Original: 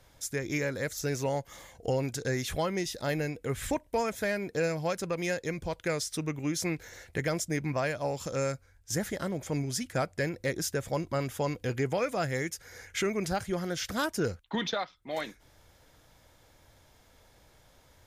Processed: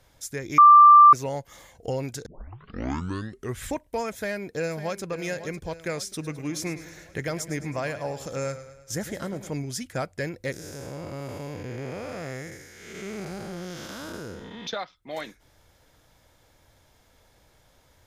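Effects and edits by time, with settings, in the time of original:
0.58–1.13 s: bleep 1.18 kHz -8 dBFS
2.26 s: tape start 1.36 s
4.15–5.03 s: echo throw 550 ms, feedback 55%, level -12 dB
6.08–9.53 s: modulated delay 106 ms, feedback 54%, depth 53 cents, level -13 dB
10.52–14.67 s: spectral blur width 316 ms

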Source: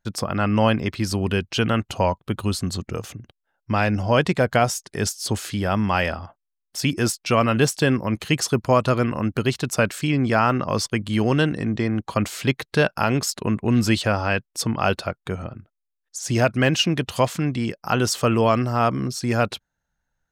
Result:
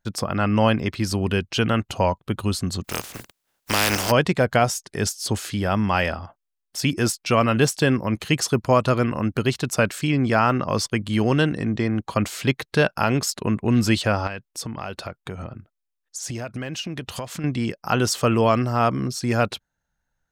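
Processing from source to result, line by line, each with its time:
2.84–4.10 s: spectral contrast reduction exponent 0.3
14.27–17.44 s: compression, threshold -27 dBFS

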